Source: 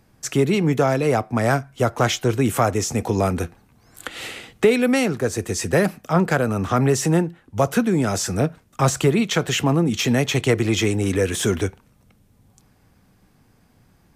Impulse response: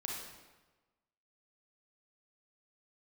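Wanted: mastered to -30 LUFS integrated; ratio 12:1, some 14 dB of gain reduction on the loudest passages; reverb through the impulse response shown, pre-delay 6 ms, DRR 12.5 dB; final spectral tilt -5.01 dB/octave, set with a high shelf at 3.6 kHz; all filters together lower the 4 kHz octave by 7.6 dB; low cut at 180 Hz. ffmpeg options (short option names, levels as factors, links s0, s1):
-filter_complex "[0:a]highpass=180,highshelf=f=3600:g=-5.5,equalizer=f=4000:t=o:g=-7,acompressor=threshold=0.0562:ratio=12,asplit=2[s0][s1];[1:a]atrim=start_sample=2205,adelay=6[s2];[s1][s2]afir=irnorm=-1:irlink=0,volume=0.211[s3];[s0][s3]amix=inputs=2:normalize=0,volume=1.06"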